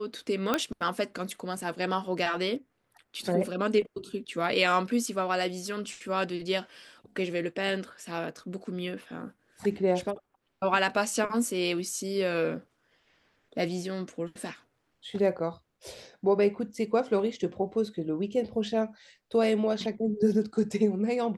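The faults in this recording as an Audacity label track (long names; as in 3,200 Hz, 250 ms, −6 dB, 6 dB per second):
0.540000	0.540000	click −11 dBFS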